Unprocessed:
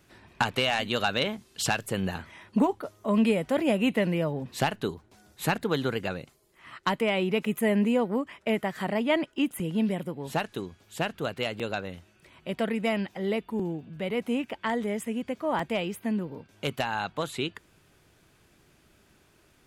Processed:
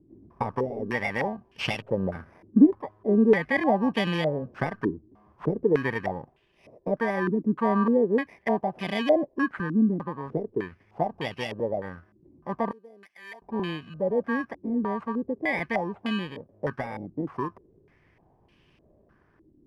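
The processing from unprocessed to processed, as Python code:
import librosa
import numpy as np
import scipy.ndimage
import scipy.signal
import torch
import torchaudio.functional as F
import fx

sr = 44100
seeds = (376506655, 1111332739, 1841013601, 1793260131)

y = fx.bit_reversed(x, sr, seeds[0], block=32)
y = fx.differentiator(y, sr, at=(12.71, 13.42))
y = fx.filter_held_lowpass(y, sr, hz=3.3, low_hz=310.0, high_hz=2800.0)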